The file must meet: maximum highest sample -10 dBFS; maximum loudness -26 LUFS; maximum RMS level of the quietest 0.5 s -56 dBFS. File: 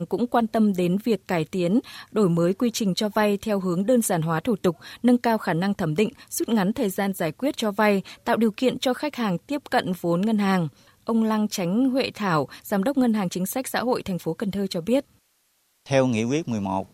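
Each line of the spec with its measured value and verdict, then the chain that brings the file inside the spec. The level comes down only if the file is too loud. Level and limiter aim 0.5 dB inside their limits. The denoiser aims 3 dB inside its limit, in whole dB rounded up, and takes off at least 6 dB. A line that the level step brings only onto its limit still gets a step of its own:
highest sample -6.0 dBFS: fail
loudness -24.0 LUFS: fail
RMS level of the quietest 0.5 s -67 dBFS: pass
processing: trim -2.5 dB; peak limiter -10.5 dBFS

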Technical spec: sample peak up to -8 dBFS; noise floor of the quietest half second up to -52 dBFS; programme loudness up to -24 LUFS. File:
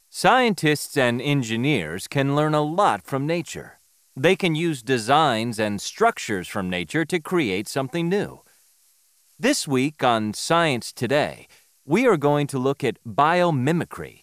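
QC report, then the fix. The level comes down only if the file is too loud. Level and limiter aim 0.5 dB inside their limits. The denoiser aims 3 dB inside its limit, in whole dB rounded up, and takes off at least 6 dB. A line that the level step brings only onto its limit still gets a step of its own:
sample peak -3.0 dBFS: fail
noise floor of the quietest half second -61 dBFS: pass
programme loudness -22.0 LUFS: fail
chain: trim -2.5 dB; peak limiter -8.5 dBFS

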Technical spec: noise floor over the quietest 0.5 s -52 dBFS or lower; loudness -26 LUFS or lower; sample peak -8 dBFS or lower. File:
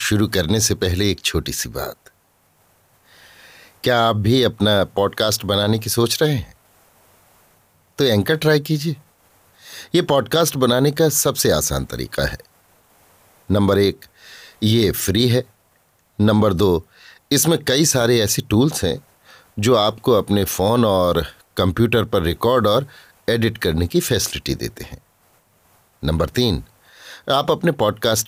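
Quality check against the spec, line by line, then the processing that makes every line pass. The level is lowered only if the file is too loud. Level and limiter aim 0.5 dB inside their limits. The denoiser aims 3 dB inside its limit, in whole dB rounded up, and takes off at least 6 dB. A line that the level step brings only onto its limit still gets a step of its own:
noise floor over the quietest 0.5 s -60 dBFS: pass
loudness -18.0 LUFS: fail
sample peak -5.5 dBFS: fail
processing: trim -8.5 dB

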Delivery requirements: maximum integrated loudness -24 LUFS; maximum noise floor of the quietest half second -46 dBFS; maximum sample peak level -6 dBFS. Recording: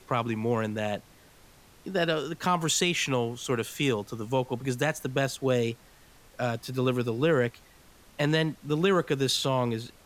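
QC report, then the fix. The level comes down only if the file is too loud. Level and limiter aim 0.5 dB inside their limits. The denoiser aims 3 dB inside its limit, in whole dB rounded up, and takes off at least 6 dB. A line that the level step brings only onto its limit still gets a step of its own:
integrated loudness -28.0 LUFS: pass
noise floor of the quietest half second -55 dBFS: pass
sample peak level -11.5 dBFS: pass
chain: none needed

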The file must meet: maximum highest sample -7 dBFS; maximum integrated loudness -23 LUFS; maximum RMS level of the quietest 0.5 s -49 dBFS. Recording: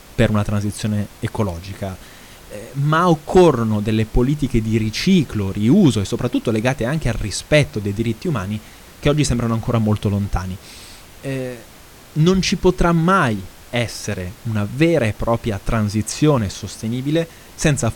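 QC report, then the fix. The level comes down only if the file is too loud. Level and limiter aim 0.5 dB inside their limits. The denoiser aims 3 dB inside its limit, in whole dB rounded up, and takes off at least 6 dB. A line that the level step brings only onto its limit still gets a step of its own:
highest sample -3.5 dBFS: fail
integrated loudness -19.0 LUFS: fail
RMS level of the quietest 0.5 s -42 dBFS: fail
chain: noise reduction 6 dB, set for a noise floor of -42 dBFS; trim -4.5 dB

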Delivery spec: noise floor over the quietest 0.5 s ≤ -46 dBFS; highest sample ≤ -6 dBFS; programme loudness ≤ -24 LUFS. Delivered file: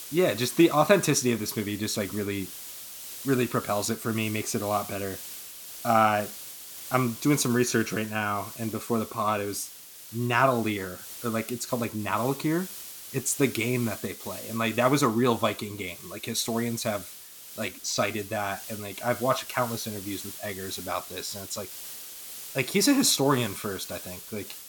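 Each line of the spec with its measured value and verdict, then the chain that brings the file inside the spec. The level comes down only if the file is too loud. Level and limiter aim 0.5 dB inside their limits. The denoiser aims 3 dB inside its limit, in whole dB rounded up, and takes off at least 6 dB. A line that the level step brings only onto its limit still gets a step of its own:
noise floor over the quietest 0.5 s -45 dBFS: fail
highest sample -5.5 dBFS: fail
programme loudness -27.5 LUFS: pass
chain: noise reduction 6 dB, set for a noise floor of -45 dBFS; peak limiter -6.5 dBFS

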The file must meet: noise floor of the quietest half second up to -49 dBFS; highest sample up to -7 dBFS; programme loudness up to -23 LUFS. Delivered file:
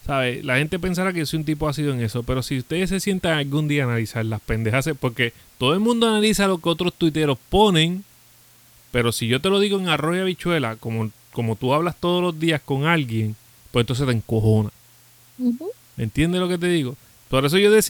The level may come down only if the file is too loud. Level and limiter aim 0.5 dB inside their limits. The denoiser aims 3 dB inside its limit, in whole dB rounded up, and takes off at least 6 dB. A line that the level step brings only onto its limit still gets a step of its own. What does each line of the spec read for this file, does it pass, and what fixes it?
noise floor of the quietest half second -52 dBFS: pass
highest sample -4.0 dBFS: fail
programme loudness -21.5 LUFS: fail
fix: trim -2 dB; peak limiter -7.5 dBFS

